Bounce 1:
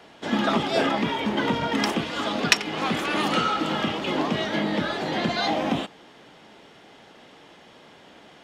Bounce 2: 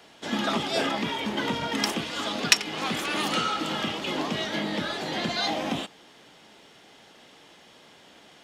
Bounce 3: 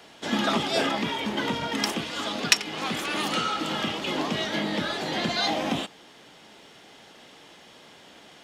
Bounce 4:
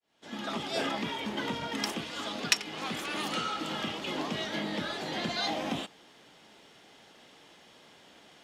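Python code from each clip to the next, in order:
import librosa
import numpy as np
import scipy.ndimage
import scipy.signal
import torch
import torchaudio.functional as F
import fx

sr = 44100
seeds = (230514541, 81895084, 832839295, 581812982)

y1 = fx.high_shelf(x, sr, hz=3500.0, db=10.5)
y1 = y1 * librosa.db_to_amplitude(-5.0)
y2 = fx.rider(y1, sr, range_db=10, speed_s=2.0)
y3 = fx.fade_in_head(y2, sr, length_s=0.88)
y3 = y3 * librosa.db_to_amplitude(-6.0)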